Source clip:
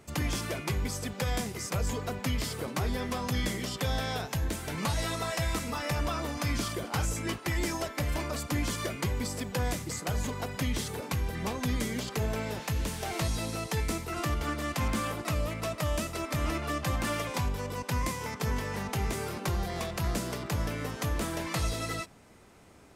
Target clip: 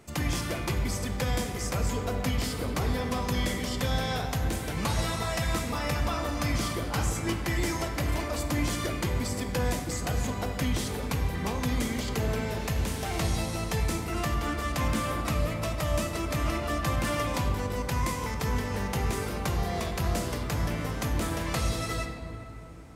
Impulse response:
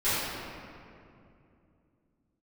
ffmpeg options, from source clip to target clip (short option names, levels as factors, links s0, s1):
-filter_complex "[0:a]asplit=2[s0][s1];[1:a]atrim=start_sample=2205,asetrate=37926,aresample=44100[s2];[s1][s2]afir=irnorm=-1:irlink=0,volume=0.126[s3];[s0][s3]amix=inputs=2:normalize=0"